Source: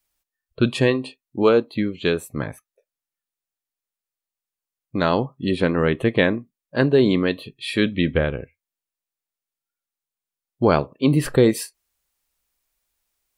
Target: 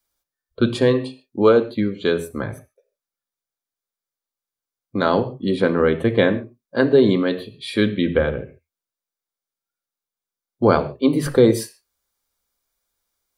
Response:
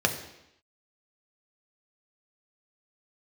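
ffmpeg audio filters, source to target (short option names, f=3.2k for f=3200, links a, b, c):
-filter_complex "[0:a]asplit=2[a][b];[1:a]atrim=start_sample=2205,atrim=end_sample=6615[c];[b][c]afir=irnorm=-1:irlink=0,volume=-13dB[d];[a][d]amix=inputs=2:normalize=0,volume=-3dB"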